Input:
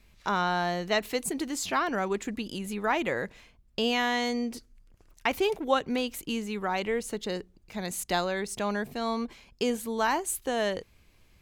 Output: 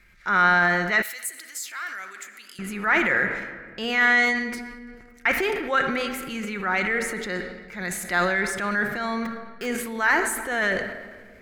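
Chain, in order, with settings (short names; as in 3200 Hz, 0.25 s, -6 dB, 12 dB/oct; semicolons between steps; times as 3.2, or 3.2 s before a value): 9.25–9.66 level-crossing sampler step -35 dBFS; band shelf 1700 Hz +13.5 dB 1 oct; shoebox room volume 3800 m³, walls mixed, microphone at 0.91 m; transient shaper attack -6 dB, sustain +6 dB; 1.02–2.59 differentiator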